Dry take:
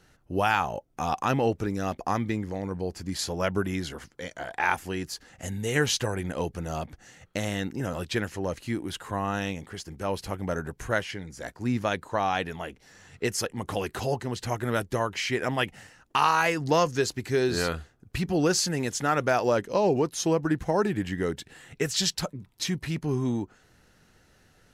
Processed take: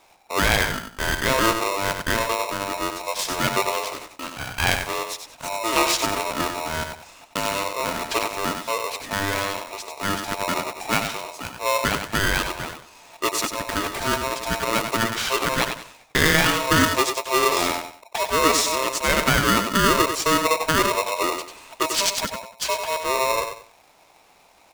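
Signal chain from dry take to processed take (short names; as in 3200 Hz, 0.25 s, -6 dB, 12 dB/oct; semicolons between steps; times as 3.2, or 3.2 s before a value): feedback echo 94 ms, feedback 28%, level -7 dB; polarity switched at an audio rate 790 Hz; gain +4 dB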